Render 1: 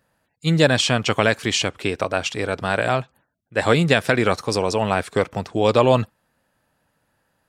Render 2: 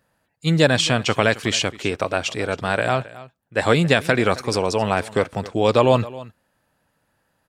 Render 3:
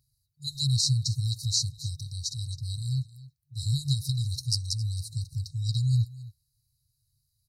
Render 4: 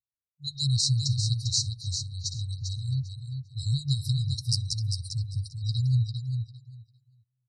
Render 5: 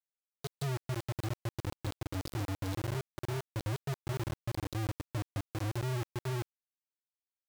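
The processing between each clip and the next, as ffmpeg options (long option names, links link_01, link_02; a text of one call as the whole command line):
ffmpeg -i in.wav -af "aecho=1:1:268:0.119" out.wav
ffmpeg -i in.wav -af "afftfilt=real='re*(1-between(b*sr/4096,140,3800))':imag='im*(1-between(b*sr/4096,140,3800))':win_size=4096:overlap=0.75,equalizer=frequency=7300:width=3.1:gain=-5.5,volume=1dB" out.wav
ffmpeg -i in.wav -filter_complex "[0:a]afftdn=noise_reduction=33:noise_floor=-41,asplit=2[link_01][link_02];[link_02]aecho=0:1:398|796|1194:0.473|0.0757|0.0121[link_03];[link_01][link_03]amix=inputs=2:normalize=0" out.wav
ffmpeg -i in.wav -af "lowpass=frequency=2000:width=0.5412,lowpass=frequency=2000:width=1.3066,acompressor=threshold=-36dB:ratio=8,acrusher=bits=5:mix=0:aa=0.000001" out.wav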